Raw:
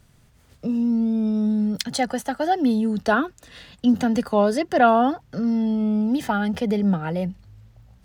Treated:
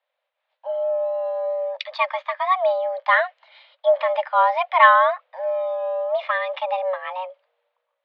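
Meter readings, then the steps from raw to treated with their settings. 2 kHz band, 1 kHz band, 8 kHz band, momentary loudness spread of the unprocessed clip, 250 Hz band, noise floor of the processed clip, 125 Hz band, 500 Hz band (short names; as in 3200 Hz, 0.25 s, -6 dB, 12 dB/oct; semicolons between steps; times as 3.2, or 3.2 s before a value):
+7.5 dB, +5.0 dB, under -25 dB, 7 LU, under -40 dB, -80 dBFS, under -40 dB, +3.5 dB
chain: mistuned SSB +370 Hz 210–3400 Hz; dynamic EQ 2500 Hz, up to +5 dB, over -42 dBFS, Q 1.9; three-band expander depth 40%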